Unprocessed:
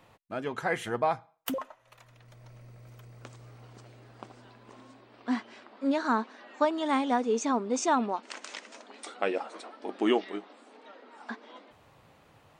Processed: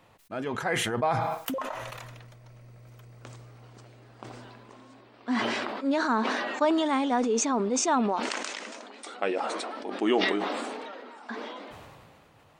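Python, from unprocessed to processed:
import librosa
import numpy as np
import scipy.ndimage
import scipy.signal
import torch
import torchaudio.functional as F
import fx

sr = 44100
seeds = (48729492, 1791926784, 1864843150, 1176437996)

y = fx.sustainer(x, sr, db_per_s=25.0)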